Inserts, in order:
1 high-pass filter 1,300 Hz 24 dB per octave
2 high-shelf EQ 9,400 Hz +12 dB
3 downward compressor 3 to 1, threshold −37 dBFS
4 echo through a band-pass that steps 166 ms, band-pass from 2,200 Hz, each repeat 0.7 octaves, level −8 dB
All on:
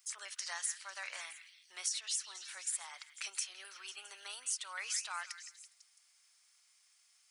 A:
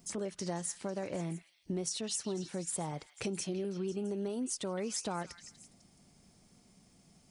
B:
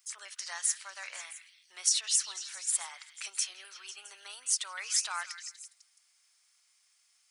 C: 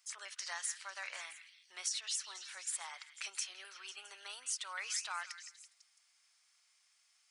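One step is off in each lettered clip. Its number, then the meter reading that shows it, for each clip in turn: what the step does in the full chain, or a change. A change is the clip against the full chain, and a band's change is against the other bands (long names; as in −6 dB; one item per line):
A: 1, 500 Hz band +26.0 dB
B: 3, change in momentary loudness spread +6 LU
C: 2, 8 kHz band −2.0 dB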